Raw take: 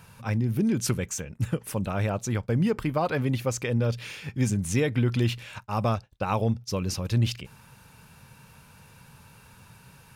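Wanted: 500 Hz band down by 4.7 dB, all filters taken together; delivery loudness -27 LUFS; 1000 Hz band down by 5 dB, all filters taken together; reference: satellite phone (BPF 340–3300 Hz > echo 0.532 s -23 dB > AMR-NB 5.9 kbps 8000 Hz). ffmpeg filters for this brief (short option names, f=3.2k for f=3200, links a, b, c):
-af "highpass=340,lowpass=3.3k,equalizer=f=500:t=o:g=-3,equalizer=f=1k:t=o:g=-5.5,aecho=1:1:532:0.0708,volume=10dB" -ar 8000 -c:a libopencore_amrnb -b:a 5900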